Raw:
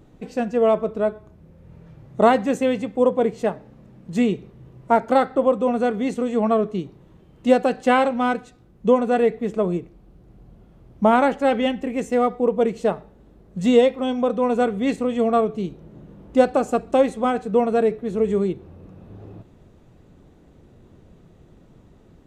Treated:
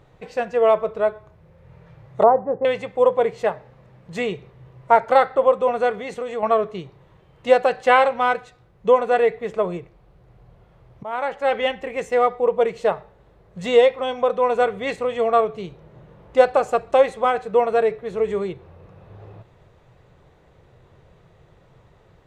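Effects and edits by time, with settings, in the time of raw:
0:02.23–0:02.65: inverse Chebyshev low-pass filter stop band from 4,200 Hz, stop band 70 dB
0:05.94–0:06.43: downward compressor 2.5 to 1, threshold −23 dBFS
0:11.03–0:11.70: fade in, from −23.5 dB
whole clip: octave-band graphic EQ 125/250/500/1,000/2,000/4,000 Hz +7/−12/+7/+7/+8/+5 dB; level −4.5 dB

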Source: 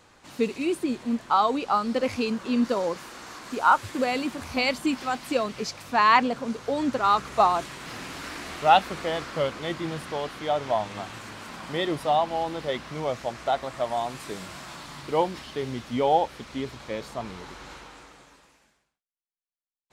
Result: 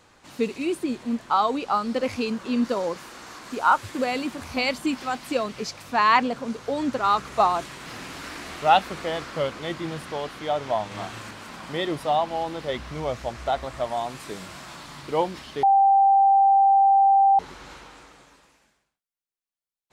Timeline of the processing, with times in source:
0:10.88–0:11.31: double-tracking delay 36 ms −2.5 dB
0:12.69–0:13.87: parametric band 61 Hz +14.5 dB 0.91 octaves
0:15.63–0:17.39: beep over 786 Hz −13.5 dBFS

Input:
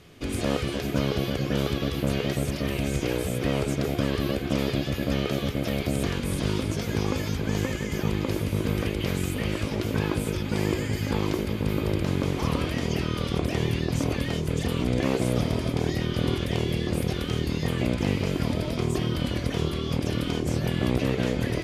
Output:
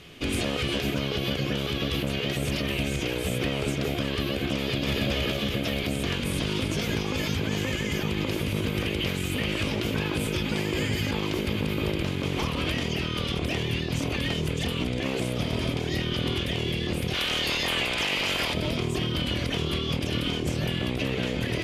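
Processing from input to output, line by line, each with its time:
0:04.54–0:05.03: delay throw 280 ms, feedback 50%, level −0.5 dB
0:17.13–0:18.53: ceiling on every frequency bin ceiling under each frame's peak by 20 dB
whole clip: parametric band 2,900 Hz +8 dB 0.89 octaves; mains-hum notches 50/100 Hz; brickwall limiter −20 dBFS; level +2.5 dB

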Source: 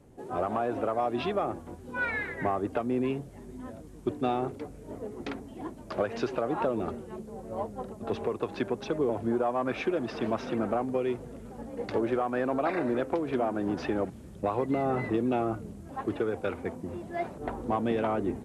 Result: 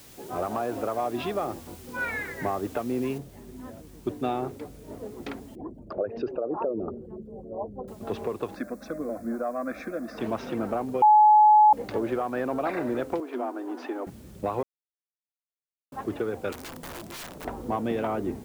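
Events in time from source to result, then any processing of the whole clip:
0:03.18: noise floor change −51 dB −60 dB
0:05.55–0:07.88: spectral envelope exaggerated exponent 2
0:08.55–0:10.18: phaser with its sweep stopped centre 600 Hz, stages 8
0:11.02–0:11.73: beep over 850 Hz −12.5 dBFS
0:13.20–0:14.07: Chebyshev high-pass with heavy ripple 240 Hz, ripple 6 dB
0:14.63–0:15.92: silence
0:16.52–0:17.45: wrap-around overflow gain 34 dB

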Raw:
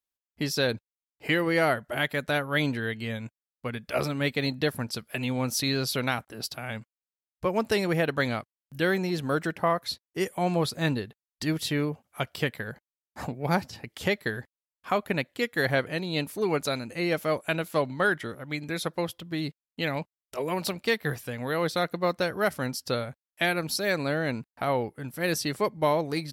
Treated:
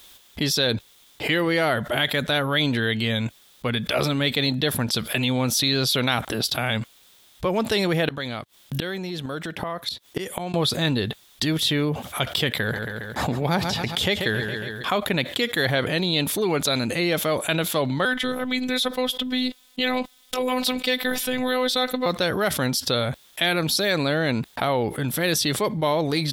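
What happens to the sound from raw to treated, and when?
0:08.08–0:10.54: gate with flip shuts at −24 dBFS, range −27 dB
0:12.55–0:14.98: repeating echo 137 ms, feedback 40%, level −15.5 dB
0:18.05–0:22.06: phases set to zero 254 Hz
whole clip: parametric band 3,500 Hz +12 dB 0.34 octaves; envelope flattener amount 70%

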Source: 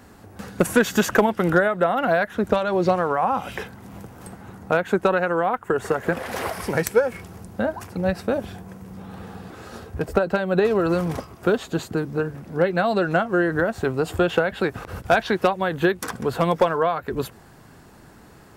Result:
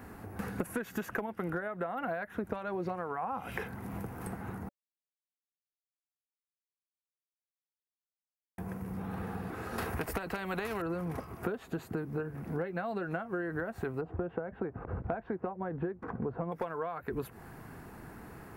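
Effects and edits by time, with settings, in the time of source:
0:04.69–0:08.58: silence
0:09.78–0:10.82: every bin compressed towards the loudest bin 2 to 1
0:14.01–0:16.52: Bessel low-pass filter 800 Hz
whole clip: flat-topped bell 5,000 Hz −9 dB; notch filter 570 Hz, Q 12; downward compressor 12 to 1, threshold −32 dBFS

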